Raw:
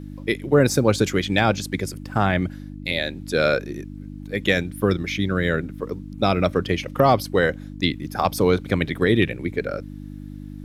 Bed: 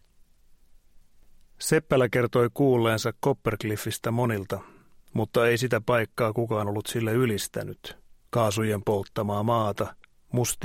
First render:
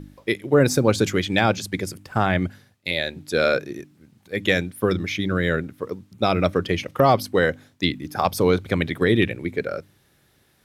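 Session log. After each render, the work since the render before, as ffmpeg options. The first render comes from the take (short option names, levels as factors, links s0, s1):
-af "bandreject=f=50:t=h:w=4,bandreject=f=100:t=h:w=4,bandreject=f=150:t=h:w=4,bandreject=f=200:t=h:w=4,bandreject=f=250:t=h:w=4,bandreject=f=300:t=h:w=4"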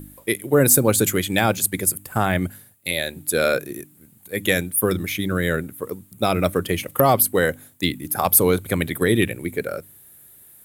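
-af "aexciter=amount=9.1:drive=6.9:freq=7900"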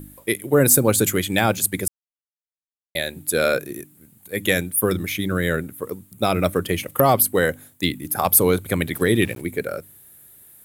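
-filter_complex "[0:a]asplit=3[s0][s1][s2];[s0]afade=t=out:st=8.93:d=0.02[s3];[s1]aeval=exprs='val(0)*gte(abs(val(0)),0.0112)':c=same,afade=t=in:st=8.93:d=0.02,afade=t=out:st=9.4:d=0.02[s4];[s2]afade=t=in:st=9.4:d=0.02[s5];[s3][s4][s5]amix=inputs=3:normalize=0,asplit=3[s6][s7][s8];[s6]atrim=end=1.88,asetpts=PTS-STARTPTS,afade=t=out:st=1.876:d=0.004:c=hsin[s9];[s7]atrim=start=1.88:end=2.95,asetpts=PTS-STARTPTS,volume=0[s10];[s8]atrim=start=2.95,asetpts=PTS-STARTPTS,afade=t=in:d=0.004:c=hsin[s11];[s9][s10][s11]concat=n=3:v=0:a=1"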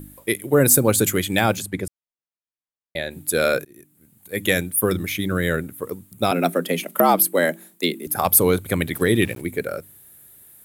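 -filter_complex "[0:a]asplit=3[s0][s1][s2];[s0]afade=t=out:st=1.61:d=0.02[s3];[s1]aemphasis=mode=reproduction:type=75kf,afade=t=in:st=1.61:d=0.02,afade=t=out:st=3.1:d=0.02[s4];[s2]afade=t=in:st=3.1:d=0.02[s5];[s3][s4][s5]amix=inputs=3:normalize=0,asettb=1/sr,asplit=3[s6][s7][s8];[s6]atrim=end=6.314[s9];[s7]atrim=start=6.31:end=8.07,asetpts=PTS-STARTPTS,afade=t=in:d=0.004:c=qsin,afade=t=out:st=1.756:d=0.004:c=qsin,afreqshift=80[s10];[s8]atrim=start=8.066[s11];[s9][s10]acrossfade=d=0.004:c1=hsin:c2=qsin[s12];[s12][s11]acrossfade=d=0.004:c1=qsin:c2=hsin,asplit=2[s13][s14];[s13]atrim=end=3.65,asetpts=PTS-STARTPTS,afade=t=out:st=3.646:d=0.004:c=hsin:silence=0.0668344[s15];[s14]atrim=start=3.65,asetpts=PTS-STARTPTS,afade=t=in:d=0.73:silence=0.0668344[s16];[s15][s16]concat=n=2:v=0:a=1"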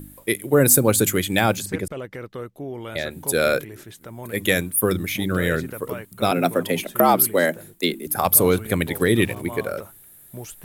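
-filter_complex "[1:a]volume=0.266[s0];[0:a][s0]amix=inputs=2:normalize=0"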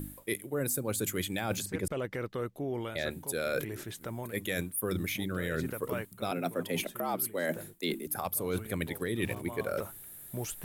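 -af "alimiter=limit=0.355:level=0:latency=1:release=348,areverse,acompressor=threshold=0.0316:ratio=6,areverse"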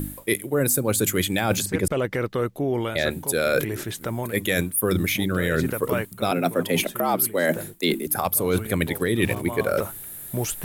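-af "volume=3.35"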